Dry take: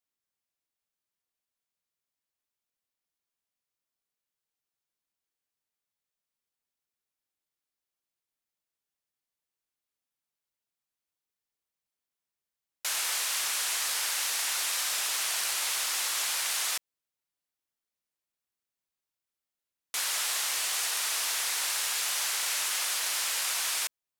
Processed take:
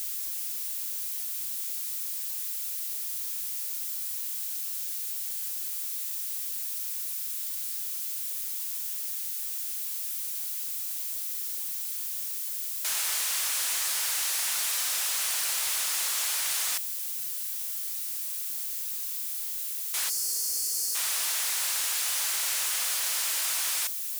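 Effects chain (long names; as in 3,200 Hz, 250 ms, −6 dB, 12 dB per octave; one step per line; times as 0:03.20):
spike at every zero crossing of −26.5 dBFS
0:20.09–0:20.95: gain on a spectral selection 510–4,200 Hz −19 dB
0:22.42–0:23.41: low-shelf EQ 160 Hz +7.5 dB
level −2 dB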